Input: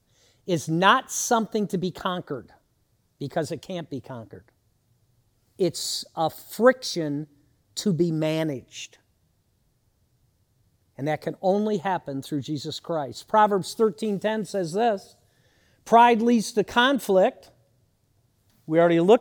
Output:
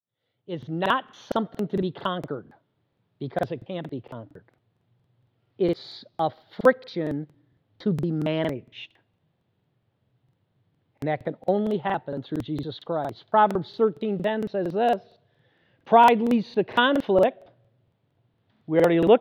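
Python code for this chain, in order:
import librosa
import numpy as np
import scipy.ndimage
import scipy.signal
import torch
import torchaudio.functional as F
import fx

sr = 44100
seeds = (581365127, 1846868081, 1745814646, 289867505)

y = fx.fade_in_head(x, sr, length_s=1.3)
y = scipy.signal.sosfilt(scipy.signal.ellip(3, 1.0, 40, [110.0, 3300.0], 'bandpass', fs=sr, output='sos'), y)
y = fx.buffer_crackle(y, sr, first_s=0.58, period_s=0.23, block=2048, kind='repeat')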